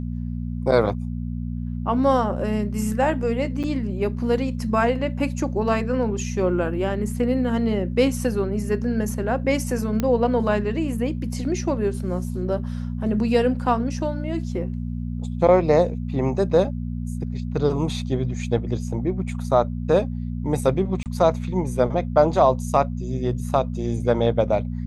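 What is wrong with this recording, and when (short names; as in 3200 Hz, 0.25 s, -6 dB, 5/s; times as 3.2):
hum 60 Hz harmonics 4 -28 dBFS
3.63–3.64 gap 7 ms
10 pop -10 dBFS
21.03–21.06 gap 28 ms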